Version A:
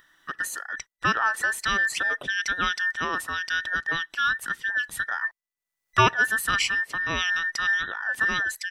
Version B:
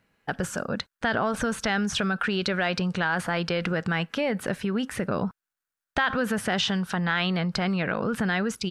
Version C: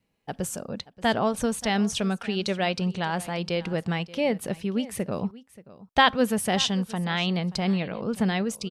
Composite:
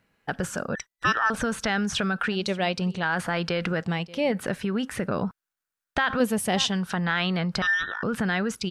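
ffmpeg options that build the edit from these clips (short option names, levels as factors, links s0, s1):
-filter_complex "[0:a]asplit=2[s0][s1];[2:a]asplit=3[s2][s3][s4];[1:a]asplit=6[s5][s6][s7][s8][s9][s10];[s5]atrim=end=0.752[s11];[s0]atrim=start=0.748:end=1.302[s12];[s6]atrim=start=1.298:end=2.322[s13];[s2]atrim=start=2.318:end=3.032[s14];[s7]atrim=start=3.028:end=3.842[s15];[s3]atrim=start=3.838:end=4.322[s16];[s8]atrim=start=4.318:end=6.202[s17];[s4]atrim=start=6.198:end=6.722[s18];[s9]atrim=start=6.718:end=7.622[s19];[s1]atrim=start=7.618:end=8.032[s20];[s10]atrim=start=8.028[s21];[s11][s12]acrossfade=d=0.004:c1=hsin:c2=hsin[s22];[s22][s13]acrossfade=d=0.004:c1=hsin:c2=hsin[s23];[s23][s14]acrossfade=d=0.004:c1=hsin:c2=hsin[s24];[s24][s15]acrossfade=d=0.004:c1=hsin:c2=hsin[s25];[s25][s16]acrossfade=d=0.004:c1=hsin:c2=hsin[s26];[s26][s17]acrossfade=d=0.004:c1=hsin:c2=hsin[s27];[s27][s18]acrossfade=d=0.004:c1=hsin:c2=hsin[s28];[s28][s19]acrossfade=d=0.004:c1=hsin:c2=hsin[s29];[s29][s20]acrossfade=d=0.004:c1=hsin:c2=hsin[s30];[s30][s21]acrossfade=d=0.004:c1=hsin:c2=hsin"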